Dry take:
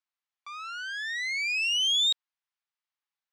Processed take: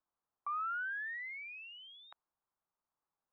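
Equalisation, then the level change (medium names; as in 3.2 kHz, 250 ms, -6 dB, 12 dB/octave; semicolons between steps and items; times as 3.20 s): low-pass 1.2 kHz 24 dB/octave; distance through air 160 m; +8.5 dB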